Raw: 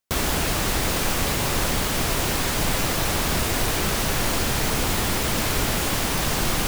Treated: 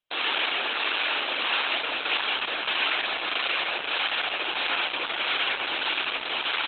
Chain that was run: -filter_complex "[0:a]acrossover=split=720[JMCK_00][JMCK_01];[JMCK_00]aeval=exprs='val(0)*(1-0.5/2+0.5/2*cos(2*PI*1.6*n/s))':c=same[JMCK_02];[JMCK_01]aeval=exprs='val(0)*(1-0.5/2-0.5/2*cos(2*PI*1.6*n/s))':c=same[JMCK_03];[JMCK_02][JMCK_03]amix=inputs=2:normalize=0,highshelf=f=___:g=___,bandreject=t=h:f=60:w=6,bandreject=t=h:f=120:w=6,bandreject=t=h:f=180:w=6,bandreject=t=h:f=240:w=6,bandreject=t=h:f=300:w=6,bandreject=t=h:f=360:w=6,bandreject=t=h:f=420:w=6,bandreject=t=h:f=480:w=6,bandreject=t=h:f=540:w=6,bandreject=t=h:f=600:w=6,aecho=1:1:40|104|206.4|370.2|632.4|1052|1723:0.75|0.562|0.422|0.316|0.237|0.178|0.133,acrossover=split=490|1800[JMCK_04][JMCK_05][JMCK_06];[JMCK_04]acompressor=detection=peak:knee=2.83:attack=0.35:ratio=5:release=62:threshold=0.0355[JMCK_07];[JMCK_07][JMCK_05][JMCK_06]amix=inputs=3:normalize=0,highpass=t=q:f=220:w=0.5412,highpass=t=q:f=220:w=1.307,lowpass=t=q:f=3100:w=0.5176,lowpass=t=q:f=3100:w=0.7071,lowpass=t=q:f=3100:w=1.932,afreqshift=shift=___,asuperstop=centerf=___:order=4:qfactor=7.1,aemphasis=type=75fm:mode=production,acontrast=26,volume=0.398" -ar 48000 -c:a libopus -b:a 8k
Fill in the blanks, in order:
2000, 11.5, 82, 2000